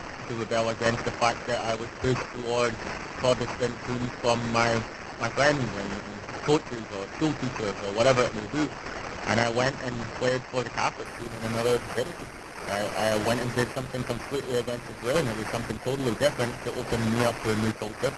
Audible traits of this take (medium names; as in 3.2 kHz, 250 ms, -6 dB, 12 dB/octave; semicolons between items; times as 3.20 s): a quantiser's noise floor 6-bit, dither triangular; random-step tremolo; aliases and images of a low sample rate 3.6 kHz, jitter 0%; Opus